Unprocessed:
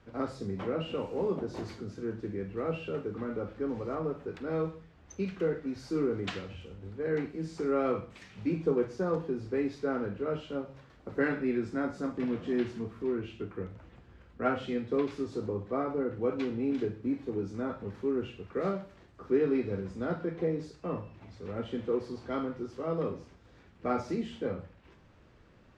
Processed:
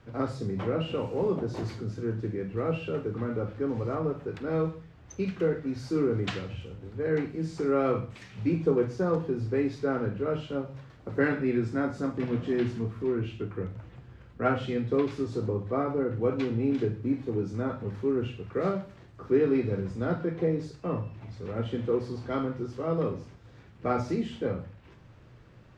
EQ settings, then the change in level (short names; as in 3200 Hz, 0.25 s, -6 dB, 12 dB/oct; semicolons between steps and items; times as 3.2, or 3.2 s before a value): bell 120 Hz +10.5 dB 0.59 oct; notches 50/100/150/200/250 Hz; +3.0 dB